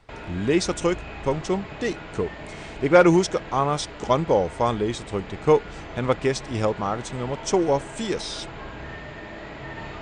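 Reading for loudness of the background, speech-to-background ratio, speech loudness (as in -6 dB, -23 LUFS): -38.0 LUFS, 14.0 dB, -24.0 LUFS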